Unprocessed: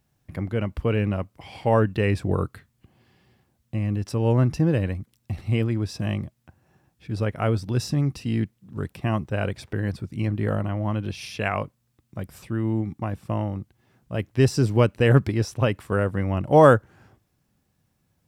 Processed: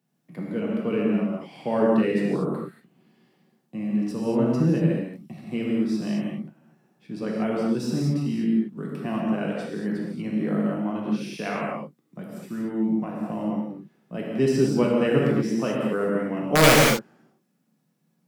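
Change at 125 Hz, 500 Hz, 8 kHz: −6.5, −0.5, +8.5 decibels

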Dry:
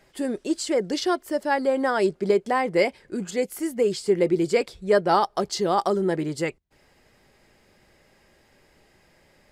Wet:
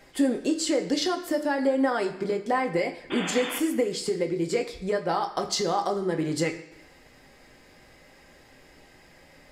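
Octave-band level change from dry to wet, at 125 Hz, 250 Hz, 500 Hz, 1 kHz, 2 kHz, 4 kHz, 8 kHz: −2.0, 0.0, −4.0, −4.0, −2.0, +1.5, +2.0 decibels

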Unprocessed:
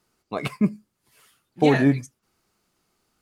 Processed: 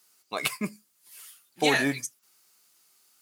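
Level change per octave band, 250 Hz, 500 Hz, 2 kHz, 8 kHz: −10.0 dB, −6.5 dB, +3.0 dB, can't be measured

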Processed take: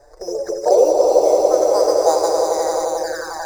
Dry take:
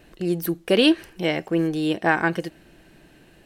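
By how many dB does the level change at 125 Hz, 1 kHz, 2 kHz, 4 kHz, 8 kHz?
below −15 dB, +9.5 dB, can't be measured, −4.0 dB, +17.5 dB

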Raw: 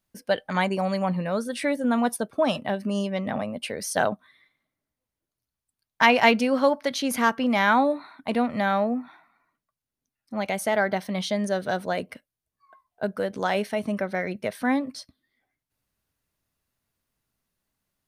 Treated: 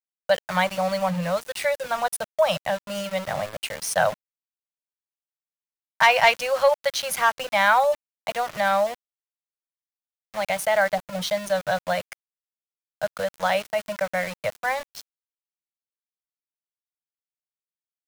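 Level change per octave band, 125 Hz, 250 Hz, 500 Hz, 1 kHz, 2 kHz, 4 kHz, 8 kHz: −2.5, −10.5, +2.0, +2.5, +2.5, +3.0, +4.0 decibels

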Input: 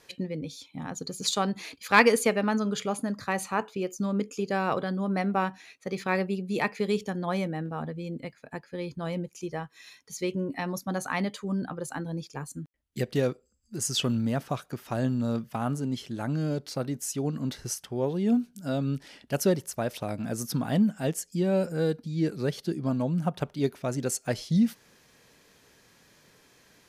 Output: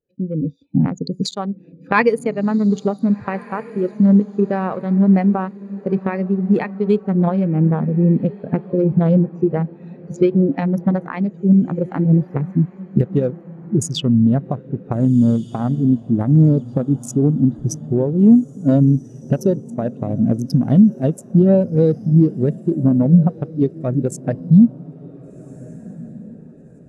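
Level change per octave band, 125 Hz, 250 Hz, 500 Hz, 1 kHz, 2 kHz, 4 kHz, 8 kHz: +15.5, +14.0, +9.0, +4.0, +1.0, 0.0, −1.0 decibels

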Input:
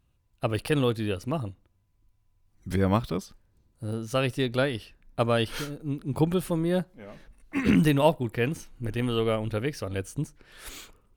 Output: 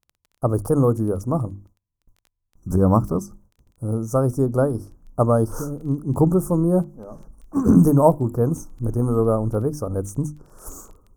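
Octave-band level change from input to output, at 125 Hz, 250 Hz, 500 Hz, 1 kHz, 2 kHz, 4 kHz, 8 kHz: +8.0 dB, +7.5 dB, +6.5 dB, +6.0 dB, −13.0 dB, below −15 dB, +5.5 dB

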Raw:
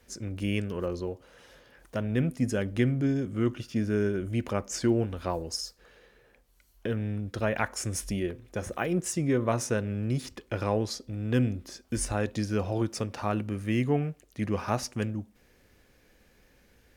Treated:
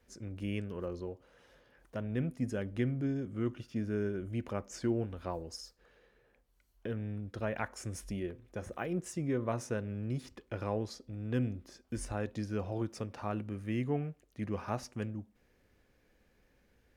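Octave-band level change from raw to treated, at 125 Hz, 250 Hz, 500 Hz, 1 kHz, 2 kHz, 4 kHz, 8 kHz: −7.0, −7.0, −7.0, −7.5, −8.5, −11.5, −12.5 decibels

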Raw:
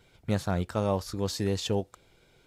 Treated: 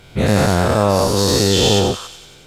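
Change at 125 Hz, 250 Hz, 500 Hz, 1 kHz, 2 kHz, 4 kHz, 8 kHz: +13.5, +13.5, +15.0, +16.5, +18.5, +20.0, +19.5 decibels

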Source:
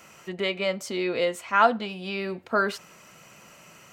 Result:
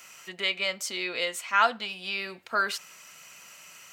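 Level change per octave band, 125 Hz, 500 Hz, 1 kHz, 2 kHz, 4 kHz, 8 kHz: below −10 dB, −8.5 dB, −3.0 dB, +1.0 dB, +3.5 dB, +5.0 dB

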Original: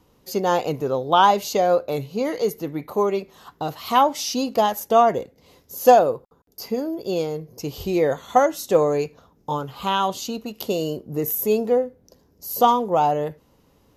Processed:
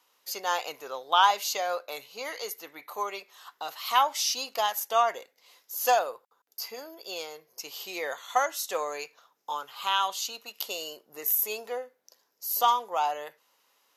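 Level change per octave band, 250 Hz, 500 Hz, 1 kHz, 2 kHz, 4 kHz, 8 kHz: −25.0, −14.0, −6.5, −1.0, 0.0, 0.0 decibels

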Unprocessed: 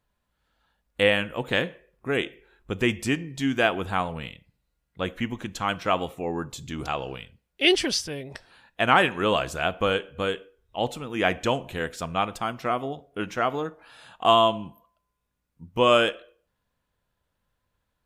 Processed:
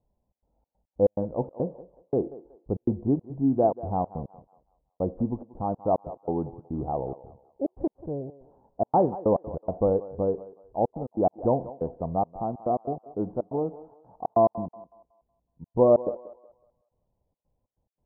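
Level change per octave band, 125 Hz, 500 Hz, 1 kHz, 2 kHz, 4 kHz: +1.0 dB, +0.5 dB, −3.5 dB, below −40 dB, below −40 dB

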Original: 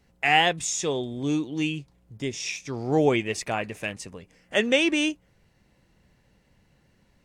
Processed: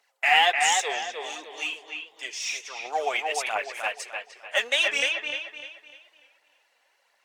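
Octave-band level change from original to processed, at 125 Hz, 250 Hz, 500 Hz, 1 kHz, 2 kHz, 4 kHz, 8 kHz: below −30 dB, −24.5 dB, −6.0 dB, +2.5 dB, +3.0 dB, +3.0 dB, +1.5 dB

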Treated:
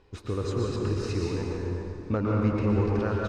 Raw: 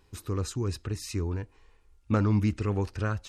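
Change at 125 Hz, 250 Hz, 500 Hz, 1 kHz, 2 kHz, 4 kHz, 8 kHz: +1.0, +2.5, +6.5, +2.5, +1.5, +0.5, −5.5 decibels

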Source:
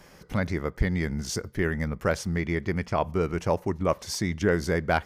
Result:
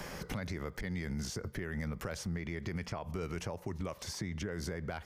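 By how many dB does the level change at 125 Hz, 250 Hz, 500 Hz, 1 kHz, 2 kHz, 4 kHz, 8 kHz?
−10.0, −11.0, −14.5, −15.0, −12.0, −7.5, −8.0 decibels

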